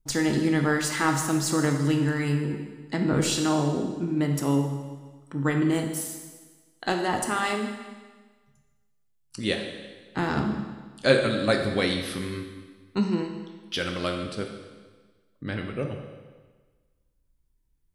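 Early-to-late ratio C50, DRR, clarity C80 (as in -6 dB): 5.5 dB, 3.5 dB, 7.0 dB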